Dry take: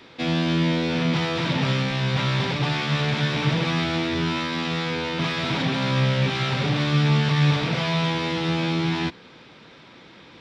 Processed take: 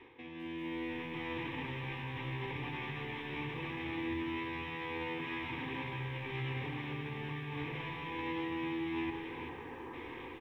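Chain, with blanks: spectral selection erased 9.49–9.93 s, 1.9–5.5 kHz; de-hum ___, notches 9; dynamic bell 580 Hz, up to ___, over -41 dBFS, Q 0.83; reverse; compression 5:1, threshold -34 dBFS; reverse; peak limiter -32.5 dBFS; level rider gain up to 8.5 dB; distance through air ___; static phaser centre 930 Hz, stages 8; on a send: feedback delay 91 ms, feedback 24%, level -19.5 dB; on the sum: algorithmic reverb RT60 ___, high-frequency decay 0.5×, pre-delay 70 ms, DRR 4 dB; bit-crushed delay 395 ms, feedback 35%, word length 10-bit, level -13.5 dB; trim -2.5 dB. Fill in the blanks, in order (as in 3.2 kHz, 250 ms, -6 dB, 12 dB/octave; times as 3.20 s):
137.9 Hz, -5 dB, 290 m, 4.6 s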